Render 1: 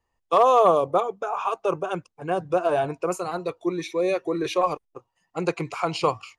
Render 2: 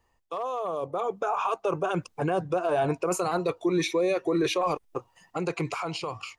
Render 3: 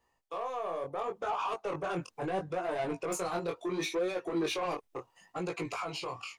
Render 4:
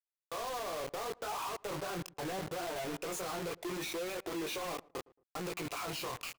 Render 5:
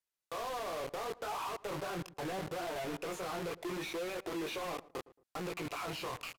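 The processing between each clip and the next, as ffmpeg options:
-af "areverse,acompressor=threshold=0.0447:ratio=6,areverse,alimiter=level_in=2.37:limit=0.0631:level=0:latency=1:release=200,volume=0.422,dynaudnorm=f=240:g=9:m=2.24,volume=2.24"
-af "lowshelf=f=130:g=-10,asoftclip=type=tanh:threshold=0.0562,flanger=delay=16.5:depth=7.2:speed=0.72"
-filter_complex "[0:a]alimiter=level_in=3.35:limit=0.0631:level=0:latency=1:release=10,volume=0.299,acrusher=bits=6:mix=0:aa=0.000001,asplit=2[s0][s1];[s1]adelay=112,lowpass=f=990:p=1,volume=0.0841,asplit=2[s2][s3];[s3]adelay=112,lowpass=f=990:p=1,volume=0.3[s4];[s0][s2][s4]amix=inputs=3:normalize=0,volume=1.12"
-filter_complex "[0:a]aresample=32000,aresample=44100,asoftclip=type=tanh:threshold=0.0126,acrossover=split=3900[s0][s1];[s1]acompressor=threshold=0.00224:ratio=4:attack=1:release=60[s2];[s0][s2]amix=inputs=2:normalize=0,volume=1.58"

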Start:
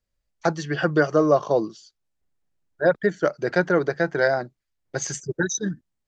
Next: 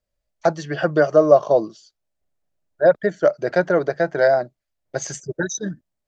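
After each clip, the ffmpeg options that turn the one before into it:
-af "equalizer=f=620:t=o:w=0.46:g=10.5,volume=0.891"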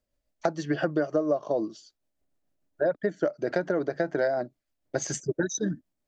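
-af "tremolo=f=6.8:d=0.33,equalizer=f=280:w=2:g=9.5,acompressor=threshold=0.0708:ratio=6"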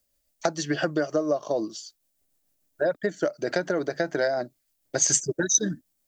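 -af "crystalizer=i=4.5:c=0"

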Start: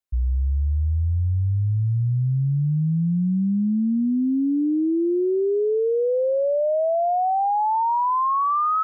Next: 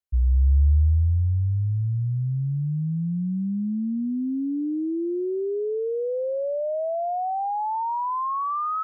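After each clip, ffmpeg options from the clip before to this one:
-af "equalizer=f=71:w=2:g=10,volume=0.531"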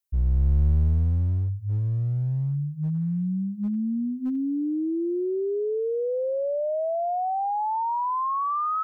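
-af "bandreject=f=50:t=h:w=6,bandreject=f=100:t=h:w=6,bandreject=f=150:t=h:w=6,bandreject=f=200:t=h:w=6,bandreject=f=250:t=h:w=6,aeval=exprs='clip(val(0),-1,0.0708)':c=same,crystalizer=i=1.5:c=0"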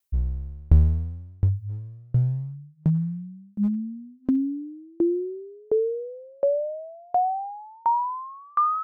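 -af "aeval=exprs='val(0)*pow(10,-35*if(lt(mod(1.4*n/s,1),2*abs(1.4)/1000),1-mod(1.4*n/s,1)/(2*abs(1.4)/1000),(mod(1.4*n/s,1)-2*abs(1.4)/1000)/(1-2*abs(1.4)/1000))/20)':c=same,volume=2.66"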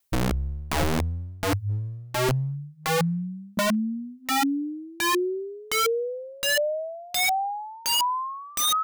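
-filter_complex "[0:a]asplit=2[s0][s1];[s1]acompressor=threshold=0.0316:ratio=10,volume=1[s2];[s0][s2]amix=inputs=2:normalize=0,aeval=exprs='(mod(8.91*val(0)+1,2)-1)/8.91':c=same"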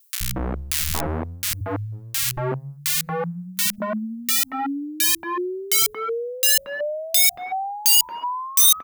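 -filter_complex "[0:a]crystalizer=i=3:c=0,acrossover=split=160|1600[s0][s1][s2];[s0]adelay=80[s3];[s1]adelay=230[s4];[s3][s4][s2]amix=inputs=3:normalize=0,volume=0.891"

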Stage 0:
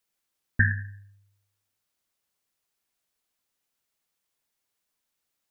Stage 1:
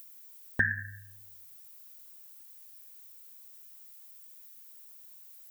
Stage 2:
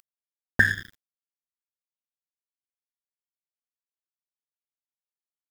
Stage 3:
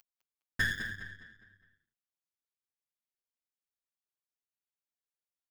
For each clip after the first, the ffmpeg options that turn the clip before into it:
-af "acompressor=threshold=0.02:ratio=2.5,aemphasis=mode=production:type=bsi,acompressor=mode=upward:threshold=0.00224:ratio=2.5,volume=2.37"
-af "aeval=exprs='sgn(val(0))*max(abs(val(0))-0.0112,0)':c=same,volume=2.66"
-filter_complex "[0:a]aeval=exprs='(tanh(11.2*val(0)+0.5)-tanh(0.5))/11.2':c=same,asplit=2[s0][s1];[s1]adelay=205,lowpass=f=4800:p=1,volume=0.422,asplit=2[s2][s3];[s3]adelay=205,lowpass=f=4800:p=1,volume=0.42,asplit=2[s4][s5];[s5]adelay=205,lowpass=f=4800:p=1,volume=0.42,asplit=2[s6][s7];[s7]adelay=205,lowpass=f=4800:p=1,volume=0.42,asplit=2[s8][s9];[s9]adelay=205,lowpass=f=4800:p=1,volume=0.42[s10];[s0][s2][s4][s6][s8][s10]amix=inputs=6:normalize=0,asplit=2[s11][s12];[s12]adelay=7.8,afreqshift=-1.9[s13];[s11][s13]amix=inputs=2:normalize=1"

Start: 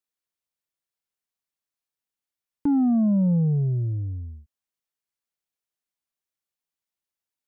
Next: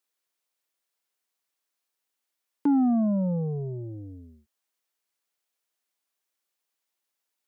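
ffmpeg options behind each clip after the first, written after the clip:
-filter_complex "[0:a]asplit=2[s0][s1];[s1]alimiter=level_in=1.58:limit=0.0631:level=0:latency=1,volume=0.631,volume=0.944[s2];[s0][s2]amix=inputs=2:normalize=0,highpass=300,volume=1.12"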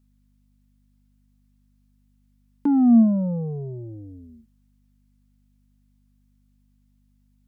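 -af "aeval=exprs='val(0)+0.000794*(sin(2*PI*50*n/s)+sin(2*PI*2*50*n/s)/2+sin(2*PI*3*50*n/s)/3+sin(2*PI*4*50*n/s)/4+sin(2*PI*5*50*n/s)/5)':c=same,equalizer=f=230:w=5.6:g=11"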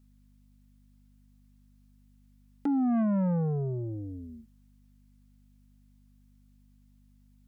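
-af "acompressor=threshold=0.126:ratio=8,asoftclip=type=tanh:threshold=0.0501,volume=1.26"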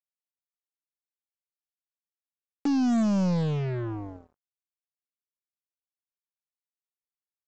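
-af "aeval=exprs='0.0668*(cos(1*acos(clip(val(0)/0.0668,-1,1)))-cos(1*PI/2))+0.00596*(cos(2*acos(clip(val(0)/0.0668,-1,1)))-cos(2*PI/2))+0.00335*(cos(3*acos(clip(val(0)/0.0668,-1,1)))-cos(3*PI/2))':c=same,aresample=16000,acrusher=bits=5:mix=0:aa=0.5,aresample=44100,volume=1.33"

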